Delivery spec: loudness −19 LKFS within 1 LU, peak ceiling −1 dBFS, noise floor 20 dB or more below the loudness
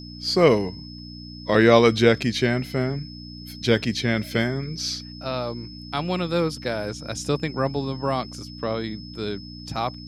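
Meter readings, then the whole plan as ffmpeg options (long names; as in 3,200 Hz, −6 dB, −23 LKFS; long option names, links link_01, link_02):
mains hum 60 Hz; hum harmonics up to 300 Hz; level of the hum −37 dBFS; interfering tone 5,200 Hz; level of the tone −42 dBFS; integrated loudness −23.5 LKFS; sample peak −2.0 dBFS; target loudness −19.0 LKFS
→ -af "bandreject=frequency=60:width_type=h:width=4,bandreject=frequency=120:width_type=h:width=4,bandreject=frequency=180:width_type=h:width=4,bandreject=frequency=240:width_type=h:width=4,bandreject=frequency=300:width_type=h:width=4"
-af "bandreject=frequency=5200:width=30"
-af "volume=4.5dB,alimiter=limit=-1dB:level=0:latency=1"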